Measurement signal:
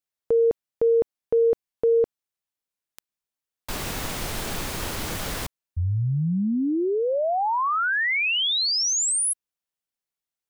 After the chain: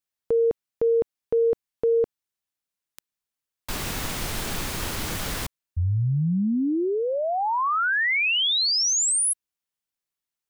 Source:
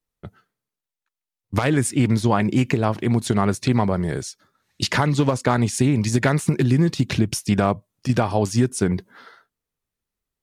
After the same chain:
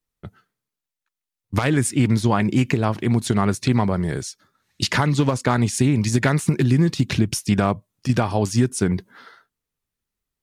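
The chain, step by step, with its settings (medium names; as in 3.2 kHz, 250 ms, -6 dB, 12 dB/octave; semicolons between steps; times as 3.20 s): peaking EQ 580 Hz -3 dB 1.4 oct; trim +1 dB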